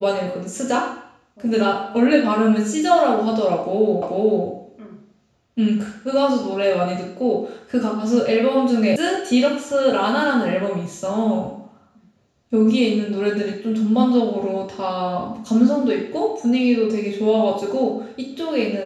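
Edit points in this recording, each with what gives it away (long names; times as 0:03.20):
0:04.02: the same again, the last 0.44 s
0:08.96: cut off before it has died away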